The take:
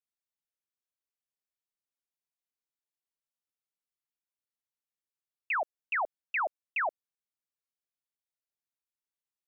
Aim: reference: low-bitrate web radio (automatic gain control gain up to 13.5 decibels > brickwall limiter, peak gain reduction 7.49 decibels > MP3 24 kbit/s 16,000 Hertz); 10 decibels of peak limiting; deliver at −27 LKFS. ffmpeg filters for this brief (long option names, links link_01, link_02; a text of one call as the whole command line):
ffmpeg -i in.wav -af "alimiter=level_in=12dB:limit=-24dB:level=0:latency=1,volume=-12dB,dynaudnorm=maxgain=13.5dB,alimiter=level_in=19.5dB:limit=-24dB:level=0:latency=1,volume=-19.5dB,volume=24dB" -ar 16000 -c:a libmp3lame -b:a 24k out.mp3